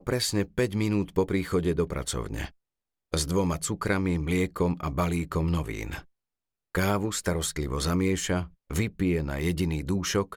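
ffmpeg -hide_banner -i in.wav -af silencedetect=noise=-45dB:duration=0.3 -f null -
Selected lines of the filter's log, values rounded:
silence_start: 2.49
silence_end: 3.13 | silence_duration: 0.63
silence_start: 6.02
silence_end: 6.75 | silence_duration: 0.73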